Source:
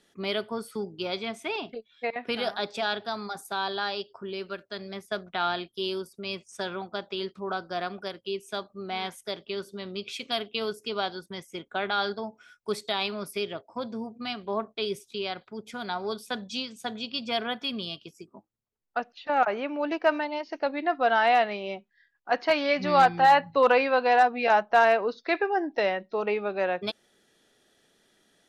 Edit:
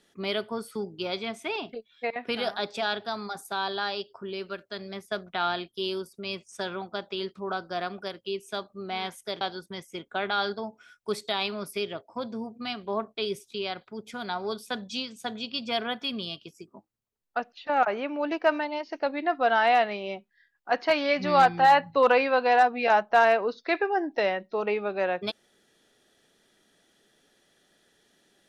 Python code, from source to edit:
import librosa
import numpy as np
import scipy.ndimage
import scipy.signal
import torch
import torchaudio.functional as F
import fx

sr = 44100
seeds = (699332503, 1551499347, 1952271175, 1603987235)

y = fx.edit(x, sr, fx.cut(start_s=9.41, length_s=1.6), tone=tone)